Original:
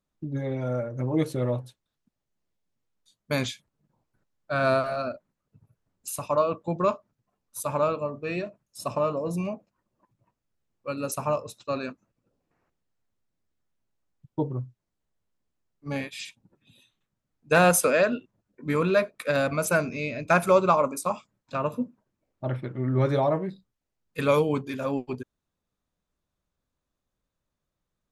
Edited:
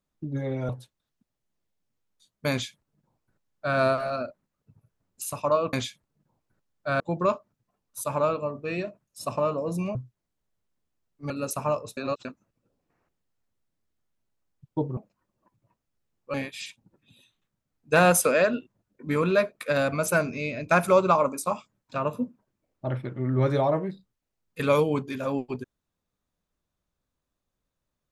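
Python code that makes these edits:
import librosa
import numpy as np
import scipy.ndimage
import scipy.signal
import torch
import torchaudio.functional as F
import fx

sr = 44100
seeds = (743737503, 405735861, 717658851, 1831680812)

y = fx.edit(x, sr, fx.cut(start_s=0.69, length_s=0.86),
    fx.duplicate(start_s=3.37, length_s=1.27, to_s=6.59),
    fx.swap(start_s=9.54, length_s=1.37, other_s=14.58, other_length_s=1.35),
    fx.reverse_span(start_s=11.58, length_s=0.28), tone=tone)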